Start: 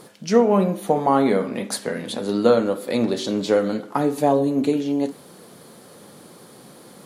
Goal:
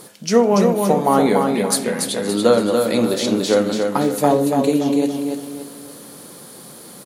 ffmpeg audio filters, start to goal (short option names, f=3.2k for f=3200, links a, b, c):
-filter_complex "[0:a]aemphasis=mode=production:type=cd,asplit=2[a][b];[b]aecho=0:1:286|572|858|1144|1430:0.596|0.226|0.086|0.0327|0.0124[c];[a][c]amix=inputs=2:normalize=0,volume=2dB"